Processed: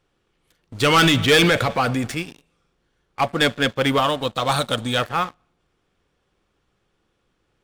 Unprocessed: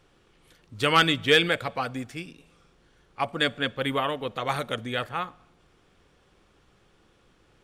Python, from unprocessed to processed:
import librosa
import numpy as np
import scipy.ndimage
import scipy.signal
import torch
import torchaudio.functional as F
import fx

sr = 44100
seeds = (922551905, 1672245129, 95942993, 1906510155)

y = fx.transient(x, sr, attack_db=1, sustain_db=7, at=(0.89, 2.18))
y = fx.graphic_eq_31(y, sr, hz=(400, 2000, 4000, 8000), db=(-9, -11, 9, 10), at=(3.98, 4.98))
y = fx.leveller(y, sr, passes=3)
y = y * 10.0 ** (-2.0 / 20.0)